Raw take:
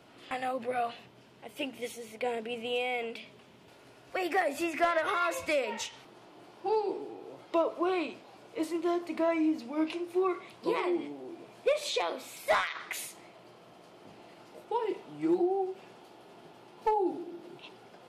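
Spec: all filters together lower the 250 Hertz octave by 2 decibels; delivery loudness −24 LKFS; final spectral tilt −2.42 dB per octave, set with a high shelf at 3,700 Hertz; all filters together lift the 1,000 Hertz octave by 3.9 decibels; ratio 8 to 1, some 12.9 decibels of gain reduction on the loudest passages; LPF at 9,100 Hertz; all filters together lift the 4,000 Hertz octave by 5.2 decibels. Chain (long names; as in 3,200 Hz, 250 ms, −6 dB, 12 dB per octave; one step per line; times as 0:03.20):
low-pass filter 9,100 Hz
parametric band 250 Hz −4 dB
parametric band 1,000 Hz +5 dB
high-shelf EQ 3,700 Hz +4 dB
parametric band 4,000 Hz +4 dB
downward compressor 8 to 1, threshold −34 dBFS
level +15.5 dB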